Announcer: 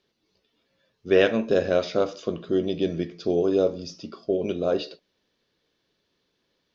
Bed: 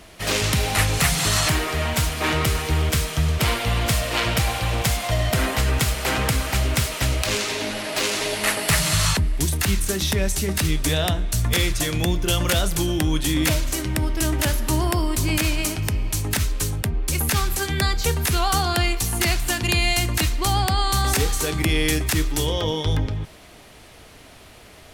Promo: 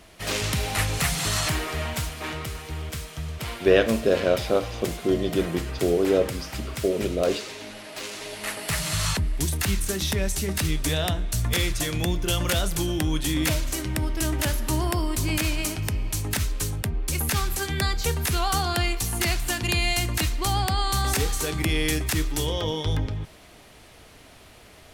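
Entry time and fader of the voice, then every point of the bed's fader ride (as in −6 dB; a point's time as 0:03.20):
2.55 s, +0.5 dB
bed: 0:01.79 −5 dB
0:02.45 −12 dB
0:08.17 −12 dB
0:09.31 −3.5 dB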